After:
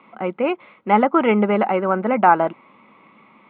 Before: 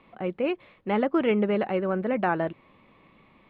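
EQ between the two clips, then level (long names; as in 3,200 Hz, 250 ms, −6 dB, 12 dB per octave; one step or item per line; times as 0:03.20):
notch filter 1,800 Hz, Q 6.6
dynamic equaliser 820 Hz, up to +6 dB, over −39 dBFS, Q 1.8
loudspeaker in its box 190–3,600 Hz, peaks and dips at 220 Hz +6 dB, 910 Hz +6 dB, 1,300 Hz +8 dB, 2,000 Hz +7 dB
+4.0 dB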